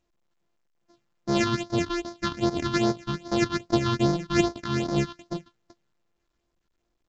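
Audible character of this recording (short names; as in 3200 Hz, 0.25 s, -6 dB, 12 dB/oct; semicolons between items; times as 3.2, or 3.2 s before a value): a buzz of ramps at a fixed pitch in blocks of 128 samples; phasing stages 6, 2.5 Hz, lowest notch 560–2700 Hz; µ-law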